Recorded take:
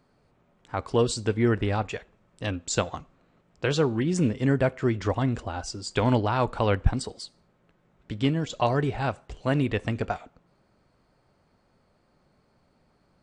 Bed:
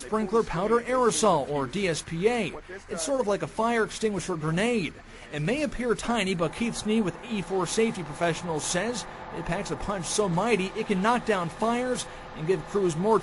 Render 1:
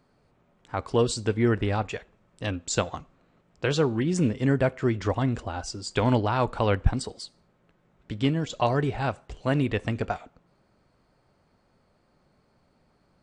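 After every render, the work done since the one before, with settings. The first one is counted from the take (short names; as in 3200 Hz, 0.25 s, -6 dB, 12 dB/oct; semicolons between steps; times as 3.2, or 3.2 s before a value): nothing audible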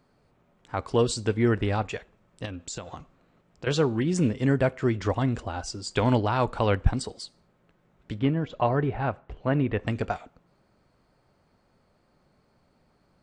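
2.45–3.67 compressor 5:1, threshold -33 dBFS; 8.19–9.87 LPF 2100 Hz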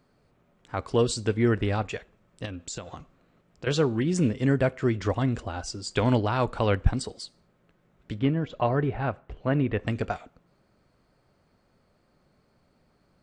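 bell 880 Hz -3 dB 0.52 oct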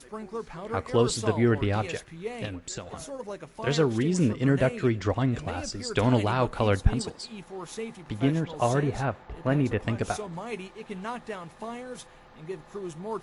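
add bed -11.5 dB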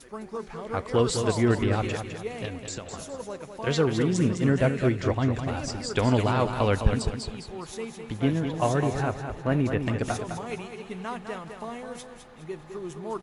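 feedback echo 0.207 s, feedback 38%, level -7.5 dB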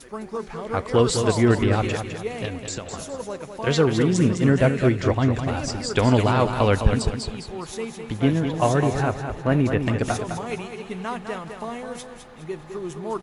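gain +4.5 dB; limiter -3 dBFS, peak gain reduction 1.5 dB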